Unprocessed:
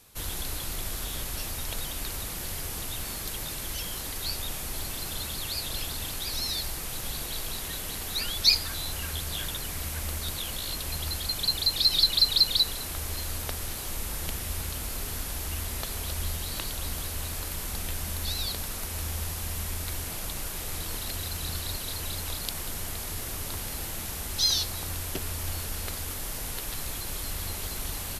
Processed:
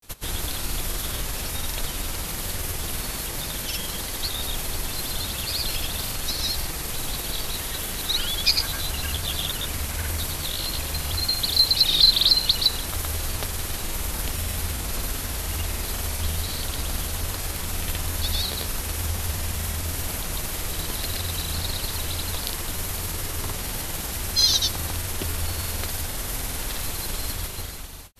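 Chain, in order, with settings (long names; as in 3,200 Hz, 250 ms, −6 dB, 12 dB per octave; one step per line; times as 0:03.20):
fade-out on the ending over 0.96 s
granular cloud, pitch spread up and down by 0 semitones
level +7 dB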